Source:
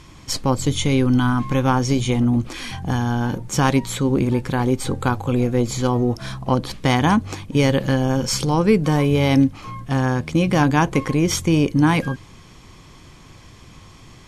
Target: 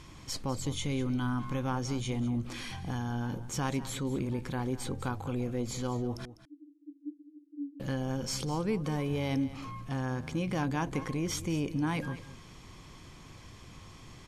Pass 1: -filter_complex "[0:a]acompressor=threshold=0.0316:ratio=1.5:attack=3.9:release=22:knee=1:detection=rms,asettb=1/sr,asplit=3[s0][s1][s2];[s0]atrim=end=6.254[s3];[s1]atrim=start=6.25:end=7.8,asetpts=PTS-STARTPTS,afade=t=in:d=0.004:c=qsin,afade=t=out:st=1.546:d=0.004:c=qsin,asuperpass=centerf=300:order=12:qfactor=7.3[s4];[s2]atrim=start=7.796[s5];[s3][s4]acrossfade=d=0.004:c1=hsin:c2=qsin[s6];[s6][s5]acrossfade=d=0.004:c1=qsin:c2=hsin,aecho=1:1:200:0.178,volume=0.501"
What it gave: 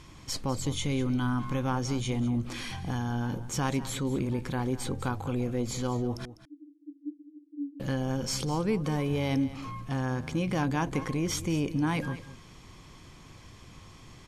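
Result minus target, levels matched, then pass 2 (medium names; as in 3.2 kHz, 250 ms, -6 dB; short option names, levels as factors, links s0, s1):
compression: peak gain reduction -3 dB
-filter_complex "[0:a]acompressor=threshold=0.0112:ratio=1.5:attack=3.9:release=22:knee=1:detection=rms,asettb=1/sr,asplit=3[s0][s1][s2];[s0]atrim=end=6.254[s3];[s1]atrim=start=6.25:end=7.8,asetpts=PTS-STARTPTS,afade=t=in:d=0.004:c=qsin,afade=t=out:st=1.546:d=0.004:c=qsin,asuperpass=centerf=300:order=12:qfactor=7.3[s4];[s2]atrim=start=7.796[s5];[s3][s4]acrossfade=d=0.004:c1=hsin:c2=qsin[s6];[s6][s5]acrossfade=d=0.004:c1=qsin:c2=hsin,aecho=1:1:200:0.178,volume=0.501"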